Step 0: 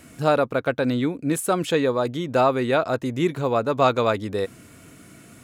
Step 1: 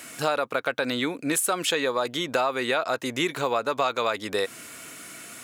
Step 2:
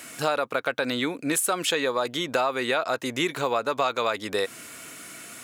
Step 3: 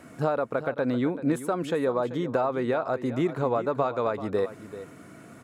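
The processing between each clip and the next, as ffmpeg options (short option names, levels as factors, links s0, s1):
-filter_complex "[0:a]highpass=f=1300:p=1,asplit=2[s0][s1];[s1]alimiter=limit=0.112:level=0:latency=1:release=31,volume=0.944[s2];[s0][s2]amix=inputs=2:normalize=0,acompressor=threshold=0.0447:ratio=4,volume=1.78"
-af anull
-af "firequalizer=gain_entry='entry(120,0);entry(290,-5);entry(2700,-24);entry(14000,-29)':delay=0.05:min_phase=1,aecho=1:1:386:0.211,volume=2.37"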